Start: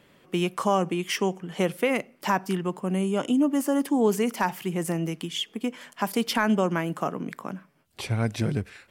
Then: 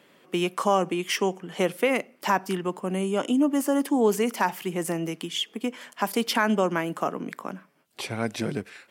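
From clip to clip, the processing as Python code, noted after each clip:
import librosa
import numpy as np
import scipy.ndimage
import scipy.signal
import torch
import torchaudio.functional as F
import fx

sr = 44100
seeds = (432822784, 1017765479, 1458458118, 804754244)

y = scipy.signal.sosfilt(scipy.signal.butter(2, 220.0, 'highpass', fs=sr, output='sos'), x)
y = y * librosa.db_to_amplitude(1.5)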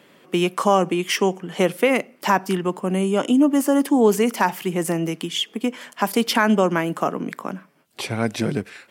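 y = fx.peak_eq(x, sr, hz=120.0, db=2.5, octaves=2.7)
y = y * librosa.db_to_amplitude(4.5)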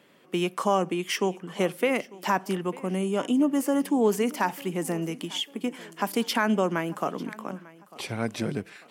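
y = fx.echo_feedback(x, sr, ms=897, feedback_pct=41, wet_db=-21.0)
y = y * librosa.db_to_amplitude(-6.5)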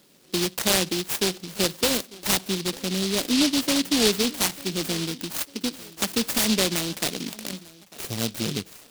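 y = fx.noise_mod_delay(x, sr, seeds[0], noise_hz=3800.0, depth_ms=0.31)
y = y * librosa.db_to_amplitude(1.5)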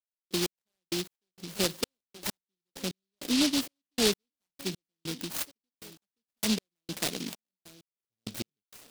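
y = fx.step_gate(x, sr, bpm=98, pattern='..x...x..xxx', floor_db=-60.0, edge_ms=4.5)
y = y * librosa.db_to_amplitude(-4.5)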